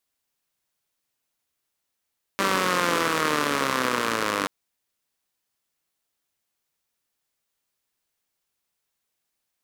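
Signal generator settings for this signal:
pulse-train model of a four-cylinder engine, changing speed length 2.08 s, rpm 5,900, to 2,900, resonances 290/470/1,100 Hz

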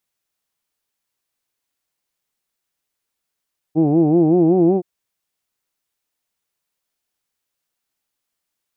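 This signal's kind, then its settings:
vowel from formants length 1.07 s, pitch 150 Hz, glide +3.5 semitones, vibrato depth 1.35 semitones, F1 340 Hz, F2 750 Hz, F3 2,500 Hz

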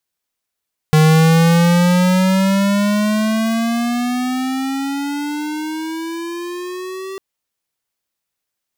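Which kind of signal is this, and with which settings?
pitch glide with a swell square, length 6.25 s, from 154 Hz, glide +16 semitones, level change −18.5 dB, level −9.5 dB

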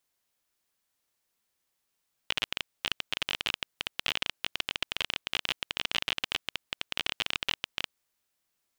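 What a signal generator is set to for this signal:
Geiger counter clicks 24 per second −11 dBFS 5.66 s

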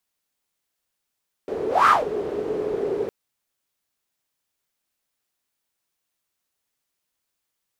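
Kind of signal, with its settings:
pass-by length 1.61 s, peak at 0:00.40, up 0.22 s, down 0.20 s, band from 420 Hz, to 1,300 Hz, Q 9.1, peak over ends 11.5 dB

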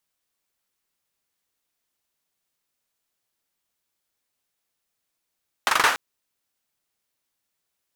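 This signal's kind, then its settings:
synth clap length 0.29 s, bursts 5, apart 42 ms, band 1,200 Hz, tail 0.50 s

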